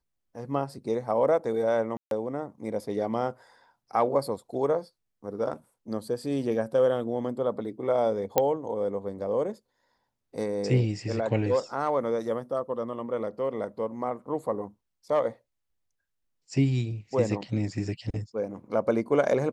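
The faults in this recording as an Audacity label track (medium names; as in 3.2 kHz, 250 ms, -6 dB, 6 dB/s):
1.970000	2.110000	dropout 142 ms
8.380000	8.380000	pop -7 dBFS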